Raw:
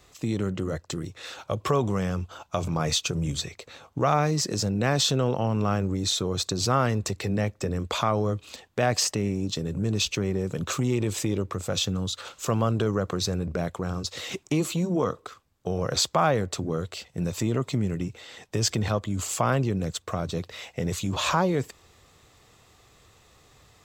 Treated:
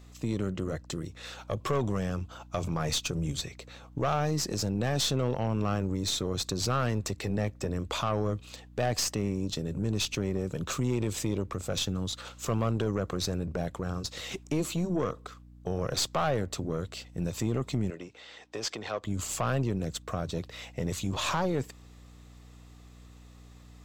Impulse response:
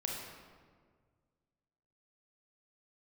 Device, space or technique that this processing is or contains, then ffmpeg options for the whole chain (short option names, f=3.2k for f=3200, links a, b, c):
valve amplifier with mains hum: -filter_complex "[0:a]aeval=exprs='(tanh(8.91*val(0)+0.45)-tanh(0.45))/8.91':c=same,aeval=exprs='val(0)+0.00398*(sin(2*PI*60*n/s)+sin(2*PI*2*60*n/s)/2+sin(2*PI*3*60*n/s)/3+sin(2*PI*4*60*n/s)/4+sin(2*PI*5*60*n/s)/5)':c=same,asettb=1/sr,asplit=3[a][b][c];[a]atrim=end=17.904[d];[b]atrim=start=17.9:end=19.04,asetpts=PTS-STARTPTS,afade=t=in:d=0.004:c=qsin,afade=t=out:st=1.136:d=0.004:c=qsin,acrossover=split=330 6500:gain=0.112 1 0.178[e][f][g];[e][f][g]amix=inputs=3:normalize=0[h];[c]atrim=start=19.036[i];[d][h]acrossfade=d=0.004:c1=hsin:c2=qsin[j];[j][i]acrossfade=d=0.004:c1=qsin:c2=hsin,volume=-2dB"